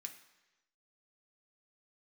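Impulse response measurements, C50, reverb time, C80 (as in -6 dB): 10.0 dB, 1.1 s, 12.5 dB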